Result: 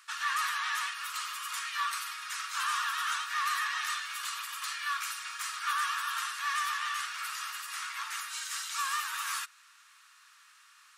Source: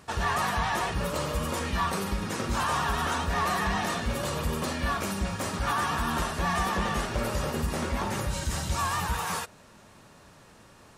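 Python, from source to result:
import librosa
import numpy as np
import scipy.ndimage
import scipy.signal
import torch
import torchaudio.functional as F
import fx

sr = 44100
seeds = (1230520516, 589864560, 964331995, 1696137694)

y = scipy.signal.sosfilt(scipy.signal.ellip(4, 1.0, 60, 1200.0, 'highpass', fs=sr, output='sos'), x)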